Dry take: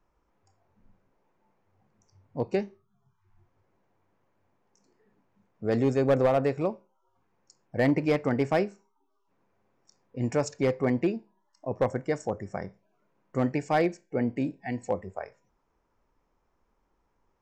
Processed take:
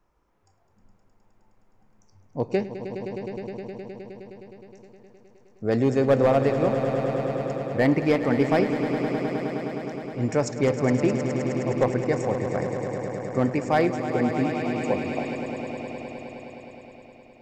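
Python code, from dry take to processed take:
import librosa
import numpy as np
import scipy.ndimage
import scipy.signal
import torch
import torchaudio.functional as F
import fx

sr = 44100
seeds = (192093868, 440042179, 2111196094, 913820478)

y = fx.spec_repair(x, sr, seeds[0], start_s=14.45, length_s=0.88, low_hz=1100.0, high_hz=5600.0, source='before')
y = fx.echo_swell(y, sr, ms=104, loudest=5, wet_db=-11.5)
y = y * librosa.db_to_amplitude(3.0)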